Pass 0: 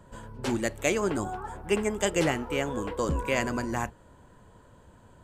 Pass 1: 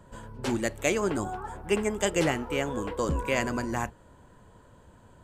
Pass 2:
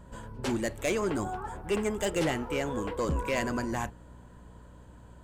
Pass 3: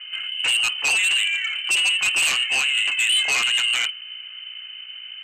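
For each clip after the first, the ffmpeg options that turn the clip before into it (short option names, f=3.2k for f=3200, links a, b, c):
-af anull
-af "asoftclip=type=tanh:threshold=-21dB,aeval=exprs='val(0)+0.00282*(sin(2*PI*60*n/s)+sin(2*PI*2*60*n/s)/2+sin(2*PI*3*60*n/s)/3+sin(2*PI*4*60*n/s)/4+sin(2*PI*5*60*n/s)/5)':c=same"
-af "lowpass=f=2.6k:t=q:w=0.5098,lowpass=f=2.6k:t=q:w=0.6013,lowpass=f=2.6k:t=q:w=0.9,lowpass=f=2.6k:t=q:w=2.563,afreqshift=-3100,aeval=exprs='0.15*sin(PI/2*2.82*val(0)/0.15)':c=same,highshelf=f=2.2k:g=8.5,volume=-5dB"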